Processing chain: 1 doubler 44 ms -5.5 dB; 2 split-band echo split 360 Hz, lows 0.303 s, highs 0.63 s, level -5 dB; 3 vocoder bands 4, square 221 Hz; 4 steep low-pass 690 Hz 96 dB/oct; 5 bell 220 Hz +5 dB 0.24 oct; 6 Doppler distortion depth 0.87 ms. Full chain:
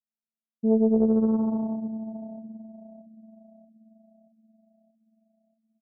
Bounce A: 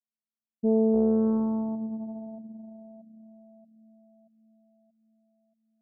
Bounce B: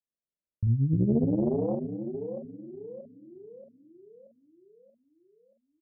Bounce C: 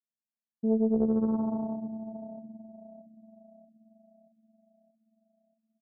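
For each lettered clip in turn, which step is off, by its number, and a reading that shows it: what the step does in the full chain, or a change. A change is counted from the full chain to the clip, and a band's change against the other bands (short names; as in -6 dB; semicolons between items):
1, 1 kHz band +2.0 dB; 3, 125 Hz band +15.5 dB; 5, 1 kHz band +3.0 dB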